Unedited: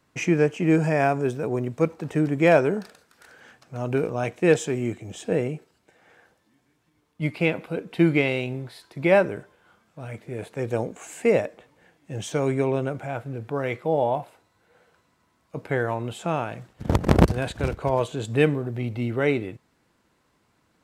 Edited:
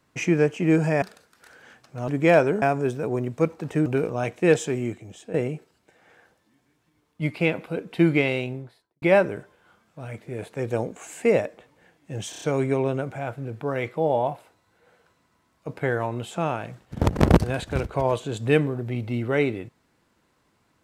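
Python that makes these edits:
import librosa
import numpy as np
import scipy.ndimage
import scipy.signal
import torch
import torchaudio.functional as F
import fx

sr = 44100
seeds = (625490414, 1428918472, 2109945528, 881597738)

y = fx.studio_fade_out(x, sr, start_s=8.35, length_s=0.67)
y = fx.edit(y, sr, fx.swap(start_s=1.02, length_s=1.24, other_s=2.8, other_length_s=1.06),
    fx.fade_out_to(start_s=4.76, length_s=0.58, floor_db=-12.5),
    fx.stutter(start_s=12.3, slice_s=0.03, count=5), tone=tone)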